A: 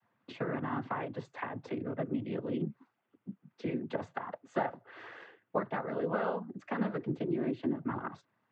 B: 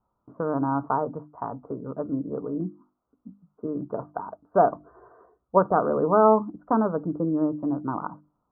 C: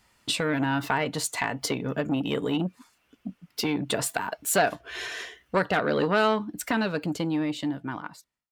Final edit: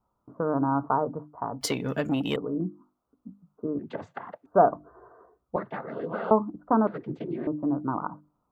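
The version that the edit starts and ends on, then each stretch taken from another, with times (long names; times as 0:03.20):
B
0:01.61–0:02.36: punch in from C
0:03.79–0:04.46: punch in from A
0:05.56–0:06.31: punch in from A
0:06.87–0:07.47: punch in from A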